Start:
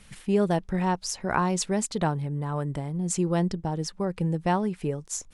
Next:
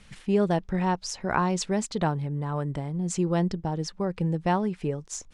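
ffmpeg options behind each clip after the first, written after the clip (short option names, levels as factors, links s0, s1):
-af "lowpass=6800"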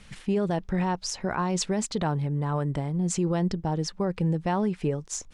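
-af "alimiter=limit=0.1:level=0:latency=1:release=36,volume=1.33"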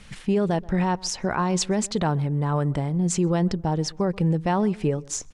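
-filter_complex "[0:a]asplit=2[s0][s1];[s1]adelay=130,lowpass=f=1400:p=1,volume=0.0841,asplit=2[s2][s3];[s3]adelay=130,lowpass=f=1400:p=1,volume=0.29[s4];[s0][s2][s4]amix=inputs=3:normalize=0,volume=1.5"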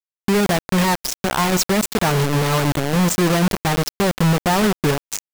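-af "acrusher=bits=3:mix=0:aa=0.000001,volume=1.68"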